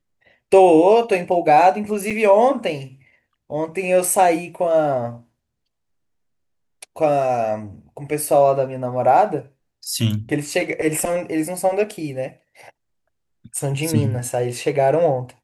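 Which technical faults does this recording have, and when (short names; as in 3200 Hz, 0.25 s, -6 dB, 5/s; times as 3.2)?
2.1–2.11 gap 6.3 ms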